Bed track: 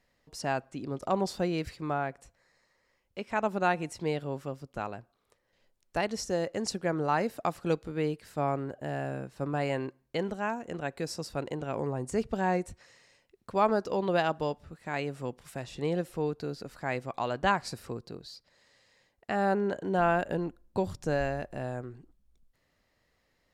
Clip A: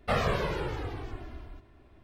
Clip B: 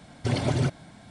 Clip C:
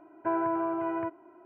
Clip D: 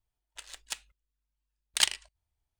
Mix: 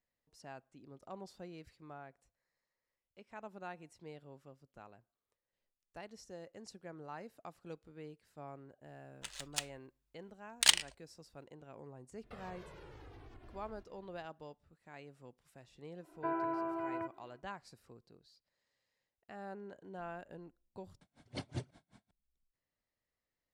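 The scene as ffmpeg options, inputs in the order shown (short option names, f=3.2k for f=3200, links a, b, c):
-filter_complex "[0:a]volume=-19.5dB[a];[1:a]acompressor=threshold=-39dB:ratio=6:attack=3.2:release=140:knee=1:detection=peak[b];[3:a]highshelf=f=2.2k:g=8.5[c];[2:a]aeval=exprs='val(0)*pow(10,-36*(0.5-0.5*cos(2*PI*5.3*n/s))/20)':c=same[d];[a]asplit=2[e][f];[e]atrim=end=21.014[g];[d]atrim=end=1.1,asetpts=PTS-STARTPTS,volume=-10.5dB[h];[f]atrim=start=22.106[i];[4:a]atrim=end=2.59,asetpts=PTS-STARTPTS,volume=-0.5dB,afade=t=in:d=0.004:c=hsin,afade=t=out:st=2.586:d=0.004:c=hsin,adelay=8860[j];[b]atrim=end=2.03,asetpts=PTS-STARTPTS,volume=-11dB,afade=t=in:d=0.004:c=hsin,afade=t=out:st=2.026:d=0.004:c=hsin,adelay=12230[k];[c]atrim=end=1.45,asetpts=PTS-STARTPTS,volume=-8.5dB,afade=t=in:d=0.1,afade=t=out:st=1.35:d=0.1,adelay=15980[l];[g][h]acrossfade=d=0.004:c1=hsin:c2=hsin[m];[m][i]acrossfade=d=0.004:c1=hsin:c2=hsin[n];[n][j][k][l]amix=inputs=4:normalize=0"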